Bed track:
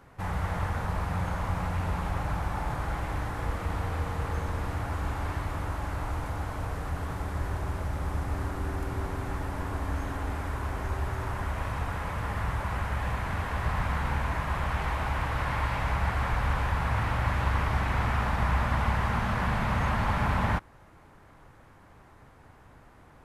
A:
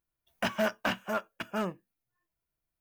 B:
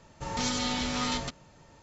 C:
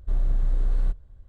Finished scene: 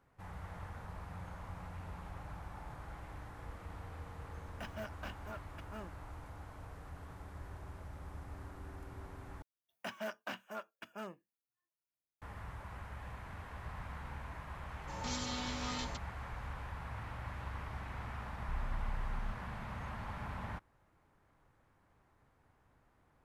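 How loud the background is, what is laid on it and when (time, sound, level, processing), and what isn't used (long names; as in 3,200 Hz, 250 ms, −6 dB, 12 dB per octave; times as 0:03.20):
bed track −16.5 dB
0:04.18: mix in A −16.5 dB
0:09.42: overwrite with A −12 dB + high-pass filter 220 Hz 6 dB per octave
0:14.67: mix in B −10 dB
0:18.40: mix in C −17 dB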